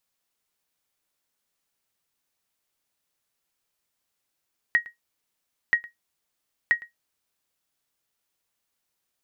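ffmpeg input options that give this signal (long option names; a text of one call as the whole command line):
ffmpeg -f lavfi -i "aevalsrc='0.282*(sin(2*PI*1890*mod(t,0.98))*exp(-6.91*mod(t,0.98)/0.14)+0.0841*sin(2*PI*1890*max(mod(t,0.98)-0.11,0))*exp(-6.91*max(mod(t,0.98)-0.11,0)/0.14))':duration=2.94:sample_rate=44100" out.wav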